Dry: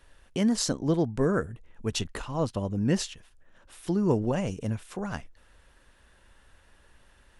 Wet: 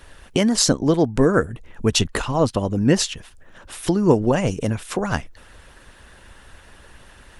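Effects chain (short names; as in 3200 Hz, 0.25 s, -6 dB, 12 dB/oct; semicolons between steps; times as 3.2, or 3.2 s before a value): harmonic-percussive split percussive +7 dB; in parallel at +2.5 dB: compressor, threshold -31 dBFS, peak gain reduction 16.5 dB; on the sum: gain +2 dB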